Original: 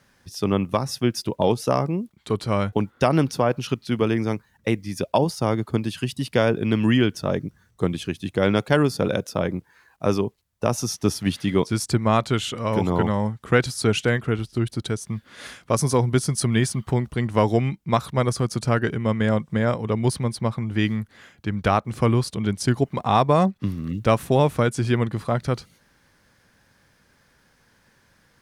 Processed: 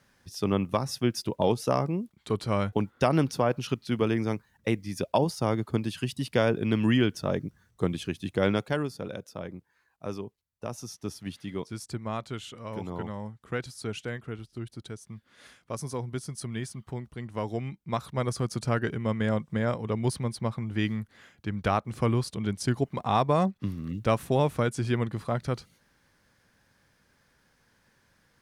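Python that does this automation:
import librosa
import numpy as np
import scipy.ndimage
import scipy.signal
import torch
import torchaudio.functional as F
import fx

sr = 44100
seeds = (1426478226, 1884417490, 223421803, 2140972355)

y = fx.gain(x, sr, db=fx.line((8.46, -4.5), (8.96, -14.0), (17.31, -14.0), (18.44, -6.0)))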